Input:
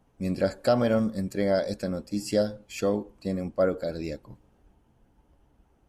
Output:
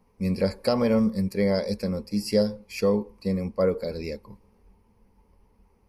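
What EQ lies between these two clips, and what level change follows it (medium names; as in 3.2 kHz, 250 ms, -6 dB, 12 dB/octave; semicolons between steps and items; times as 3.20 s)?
rippled EQ curve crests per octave 0.87, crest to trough 11 dB; 0.0 dB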